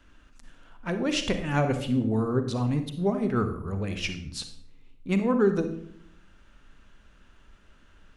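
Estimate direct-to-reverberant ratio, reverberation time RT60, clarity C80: 7.5 dB, 0.65 s, 12.5 dB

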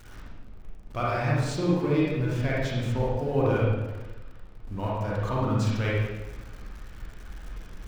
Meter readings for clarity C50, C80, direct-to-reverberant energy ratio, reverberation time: −3.0 dB, 1.5 dB, −6.5 dB, 1.1 s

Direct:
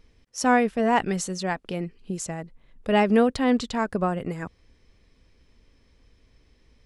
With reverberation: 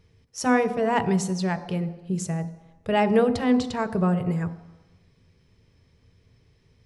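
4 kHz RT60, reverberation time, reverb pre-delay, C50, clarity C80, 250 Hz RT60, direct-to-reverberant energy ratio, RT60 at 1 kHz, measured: 1.0 s, 1.0 s, 3 ms, 13.0 dB, 14.5 dB, 0.80 s, 9.0 dB, 1.1 s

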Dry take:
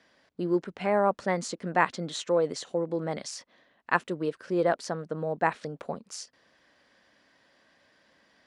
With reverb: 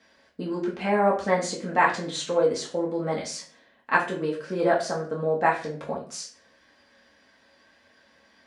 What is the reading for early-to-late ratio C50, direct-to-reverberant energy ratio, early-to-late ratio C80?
8.5 dB, −4.0 dB, 12.5 dB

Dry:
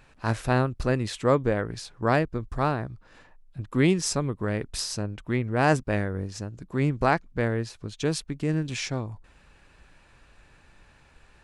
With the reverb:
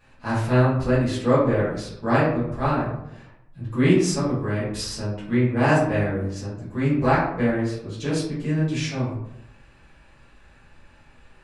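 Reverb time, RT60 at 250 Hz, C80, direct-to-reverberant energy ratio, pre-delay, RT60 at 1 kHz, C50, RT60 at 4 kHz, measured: 0.80 s, 0.90 s, 6.5 dB, −11.0 dB, 4 ms, 0.75 s, 2.5 dB, 0.40 s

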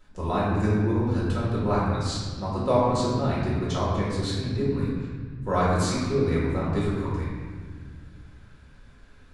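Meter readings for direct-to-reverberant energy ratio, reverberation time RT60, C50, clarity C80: −8.0 dB, 1.7 s, −2.0 dB, 0.5 dB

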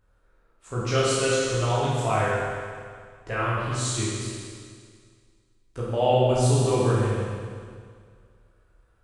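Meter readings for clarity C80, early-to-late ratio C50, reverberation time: −0.5 dB, −3.0 dB, 2.0 s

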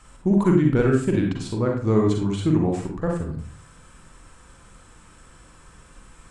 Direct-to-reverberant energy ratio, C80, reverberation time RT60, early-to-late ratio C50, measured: 0.5 dB, 8.5 dB, 0.45 s, 3.5 dB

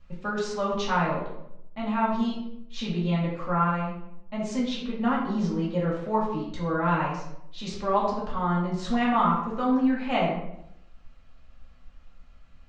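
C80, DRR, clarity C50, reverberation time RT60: 6.0 dB, −6.0 dB, 3.0 dB, 0.75 s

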